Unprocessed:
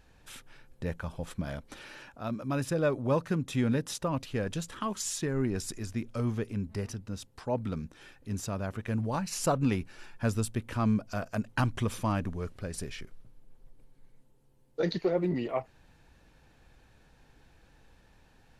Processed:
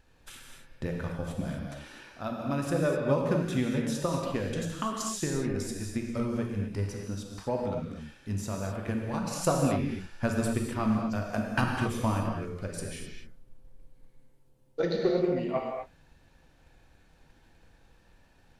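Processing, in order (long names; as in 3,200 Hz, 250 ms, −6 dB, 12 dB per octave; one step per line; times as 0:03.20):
transient designer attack +7 dB, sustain +2 dB
reverb whose tail is shaped and stops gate 280 ms flat, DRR 0 dB
level −4.5 dB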